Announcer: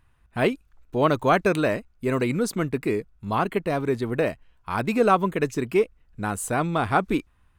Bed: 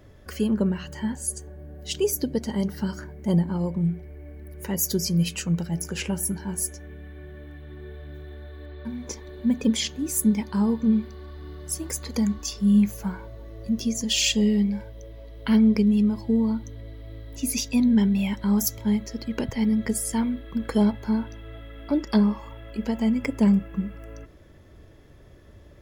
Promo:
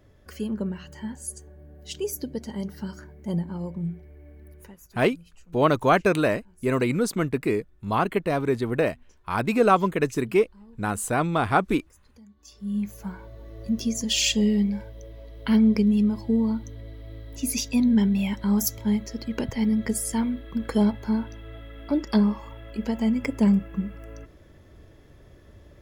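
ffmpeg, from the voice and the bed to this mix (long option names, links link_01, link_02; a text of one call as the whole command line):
ffmpeg -i stem1.wav -i stem2.wav -filter_complex "[0:a]adelay=4600,volume=0.5dB[link_01];[1:a]volume=21.5dB,afade=type=out:start_time=4.51:duration=0.25:silence=0.0794328,afade=type=in:start_time=12.36:duration=1.26:silence=0.0421697[link_02];[link_01][link_02]amix=inputs=2:normalize=0" out.wav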